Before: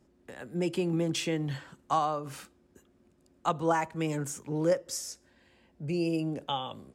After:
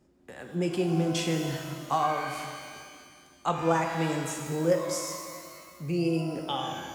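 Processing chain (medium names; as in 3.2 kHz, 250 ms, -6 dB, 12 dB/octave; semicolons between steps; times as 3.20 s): pitch-shifted reverb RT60 2 s, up +12 st, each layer -8 dB, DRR 3 dB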